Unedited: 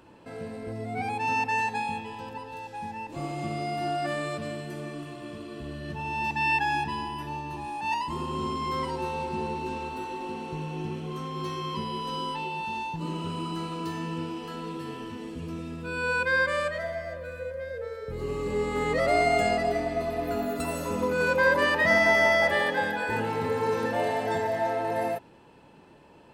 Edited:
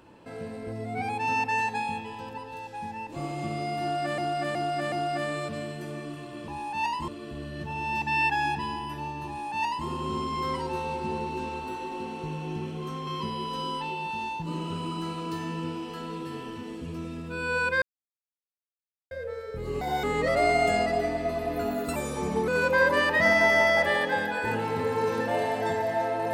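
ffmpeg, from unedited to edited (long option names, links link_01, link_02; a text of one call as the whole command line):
ffmpeg -i in.wav -filter_complex "[0:a]asplit=13[link_01][link_02][link_03][link_04][link_05][link_06][link_07][link_08][link_09][link_10][link_11][link_12][link_13];[link_01]atrim=end=4.182[link_14];[link_02]atrim=start=3.808:end=4.182[link_15];[link_03]atrim=start=3.808:end=4.182[link_16];[link_04]atrim=start=3.808:end=5.372[link_17];[link_05]atrim=start=7.558:end=8.162[link_18];[link_06]atrim=start=5.368:end=11.362[link_19];[link_07]atrim=start=11.608:end=16.36,asetpts=PTS-STARTPTS,afade=type=out:start_time=4.748:duration=0.004:curve=hsin[link_20];[link_08]atrim=start=16.36:end=17.65,asetpts=PTS-STARTPTS,volume=0[link_21];[link_09]atrim=start=17.65:end=18.354,asetpts=PTS-STARTPTS,afade=type=in:duration=0.004:curve=hsin[link_22];[link_10]atrim=start=18.35:end=18.75,asetpts=PTS-STARTPTS,asetrate=78057,aresample=44100,atrim=end_sample=9966,asetpts=PTS-STARTPTS[link_23];[link_11]atrim=start=18.746:end=20.674[link_24];[link_12]atrim=start=20.67:end=21.13,asetpts=PTS-STARTPTS,asetrate=38808,aresample=44100,atrim=end_sample=23052,asetpts=PTS-STARTPTS[link_25];[link_13]atrim=start=21.126[link_26];[link_14][link_15]acrossfade=duration=0.004:curve1=hsin:curve2=hsin[link_27];[link_27][link_16]acrossfade=duration=0.004:curve1=hsin:curve2=hsin[link_28];[link_28][link_17]acrossfade=duration=0.004:curve1=hsin:curve2=hsin[link_29];[link_29][link_18]acrossfade=duration=0.004:curve1=hsin:curve2=hsin[link_30];[link_30][link_19]acrossfade=duration=0.004:curve1=hsin:curve2=hsin[link_31];[link_20][link_21][link_22]concat=n=3:v=0:a=1[link_32];[link_31][link_32]acrossfade=duration=0.004:curve1=hsin:curve2=hsin[link_33];[link_33][link_23]acrossfade=duration=0.004:curve1=hsin:curve2=hsin[link_34];[link_34][link_24]acrossfade=duration=0.004:curve1=hsin:curve2=hsin[link_35];[link_35][link_25]acrossfade=duration=0.004:curve1=hsin:curve2=hsin[link_36];[link_36][link_26]acrossfade=duration=0.004:curve1=hsin:curve2=hsin" out.wav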